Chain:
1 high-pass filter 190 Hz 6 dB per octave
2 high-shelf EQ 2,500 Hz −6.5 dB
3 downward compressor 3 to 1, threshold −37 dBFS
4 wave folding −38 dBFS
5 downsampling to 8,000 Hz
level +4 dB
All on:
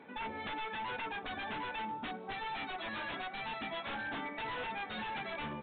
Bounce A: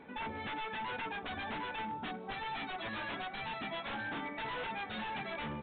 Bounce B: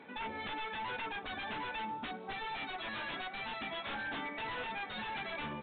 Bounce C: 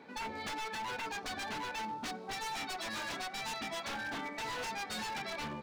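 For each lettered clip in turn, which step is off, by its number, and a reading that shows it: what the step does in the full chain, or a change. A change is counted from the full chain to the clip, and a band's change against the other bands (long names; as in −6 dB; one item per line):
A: 1, 125 Hz band +3.0 dB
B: 2, 4 kHz band +2.0 dB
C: 5, 4 kHz band +3.5 dB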